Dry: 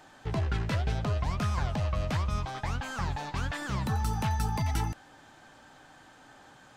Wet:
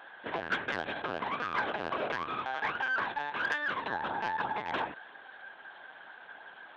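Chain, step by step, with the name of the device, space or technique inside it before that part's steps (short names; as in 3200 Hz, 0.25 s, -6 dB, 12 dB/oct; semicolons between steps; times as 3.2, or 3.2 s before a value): low shelf 84 Hz -2 dB; talking toy (LPC vocoder at 8 kHz pitch kept; HPF 430 Hz 12 dB/oct; bell 1600 Hz +9 dB 0.21 oct; soft clip -24.5 dBFS, distortion -19 dB); gain +3.5 dB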